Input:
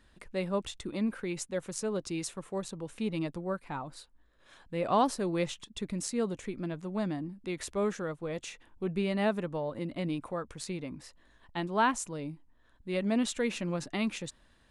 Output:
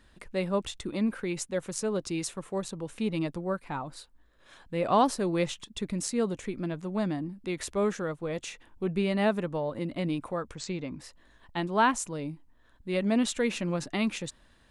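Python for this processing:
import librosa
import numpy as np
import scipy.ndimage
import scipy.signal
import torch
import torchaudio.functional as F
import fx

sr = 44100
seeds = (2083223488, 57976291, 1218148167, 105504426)

y = fx.steep_lowpass(x, sr, hz=8000.0, slope=96, at=(10.55, 10.99))
y = y * librosa.db_to_amplitude(3.0)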